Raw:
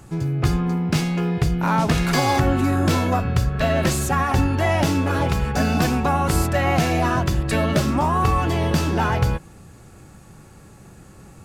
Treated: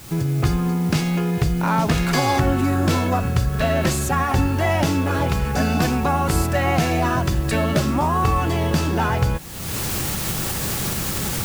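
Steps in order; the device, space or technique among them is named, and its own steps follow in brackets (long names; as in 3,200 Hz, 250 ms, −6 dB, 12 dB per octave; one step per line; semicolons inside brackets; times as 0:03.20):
cheap recorder with automatic gain (white noise bed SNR 24 dB; camcorder AGC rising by 39 dB per second)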